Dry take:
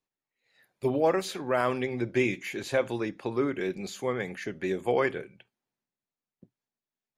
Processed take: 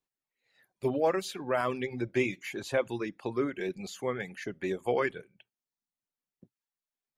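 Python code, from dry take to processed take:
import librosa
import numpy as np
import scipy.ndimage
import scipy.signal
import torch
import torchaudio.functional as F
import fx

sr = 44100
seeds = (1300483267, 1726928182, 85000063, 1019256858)

y = fx.dereverb_blind(x, sr, rt60_s=0.65)
y = F.gain(torch.from_numpy(y), -2.0).numpy()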